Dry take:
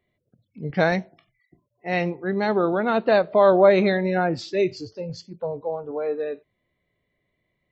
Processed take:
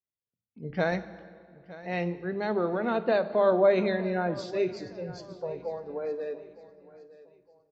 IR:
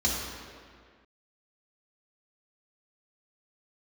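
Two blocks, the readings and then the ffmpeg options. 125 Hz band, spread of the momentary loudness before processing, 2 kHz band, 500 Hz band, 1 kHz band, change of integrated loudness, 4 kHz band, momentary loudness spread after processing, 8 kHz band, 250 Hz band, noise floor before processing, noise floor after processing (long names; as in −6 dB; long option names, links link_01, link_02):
−6.5 dB, 18 LU, −7.5 dB, −6.0 dB, −8.0 dB, −7.0 dB, −8.0 dB, 17 LU, can't be measured, −6.5 dB, −76 dBFS, below −85 dBFS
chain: -filter_complex "[0:a]agate=range=-24dB:threshold=-52dB:ratio=16:detection=peak,aecho=1:1:912|1824|2736:0.126|0.0453|0.0163,asplit=2[link_01][link_02];[1:a]atrim=start_sample=2205,lowshelf=frequency=72:gain=12[link_03];[link_02][link_03]afir=irnorm=-1:irlink=0,volume=-22dB[link_04];[link_01][link_04]amix=inputs=2:normalize=0,volume=-7.5dB"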